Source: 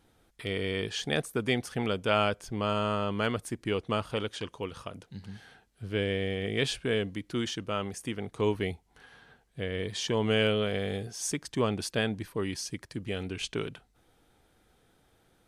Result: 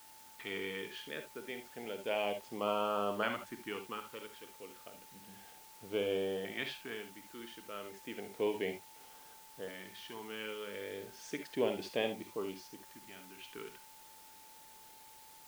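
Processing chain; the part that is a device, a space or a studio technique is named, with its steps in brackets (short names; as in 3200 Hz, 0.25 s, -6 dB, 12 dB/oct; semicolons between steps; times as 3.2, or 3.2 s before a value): shortwave radio (BPF 340–2800 Hz; tremolo 0.34 Hz, depth 74%; LFO notch saw up 0.31 Hz 420–2300 Hz; whine 880 Hz -60 dBFS; white noise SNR 17 dB); non-linear reverb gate 90 ms rising, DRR 6.5 dB; gain -1.5 dB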